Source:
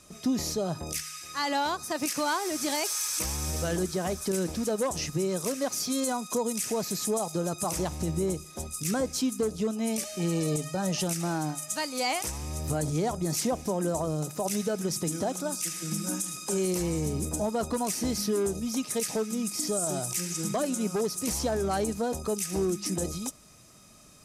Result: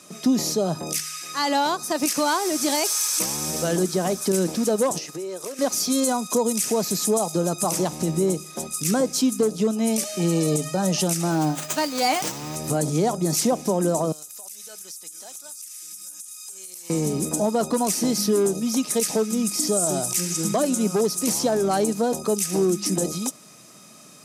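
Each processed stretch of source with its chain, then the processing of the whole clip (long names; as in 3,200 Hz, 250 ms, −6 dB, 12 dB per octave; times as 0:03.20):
0:04.98–0:05.59: transient designer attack 0 dB, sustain −5 dB + low shelf with overshoot 280 Hz −9 dB, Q 1.5 + downward compressor 4 to 1, threshold −38 dBFS
0:11.31–0:12.56: comb filter 6.6 ms, depth 41% + windowed peak hold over 3 samples
0:14.12–0:16.90: first difference + downward compressor 10 to 1, threshold −42 dBFS
whole clip: dynamic equaliser 1,900 Hz, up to −4 dB, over −44 dBFS, Q 0.9; high-pass filter 150 Hz 24 dB per octave; level +7.5 dB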